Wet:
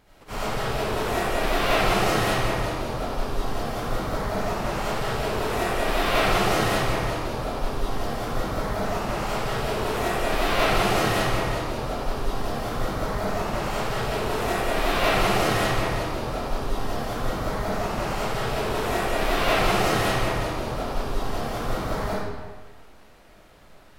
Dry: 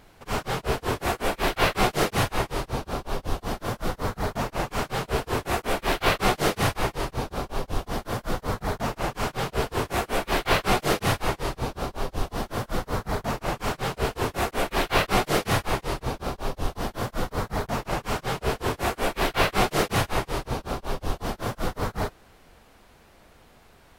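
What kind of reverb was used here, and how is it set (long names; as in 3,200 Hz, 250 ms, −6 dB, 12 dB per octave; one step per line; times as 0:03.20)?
comb and all-pass reverb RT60 1.4 s, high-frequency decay 0.8×, pre-delay 35 ms, DRR −8.5 dB
level −7 dB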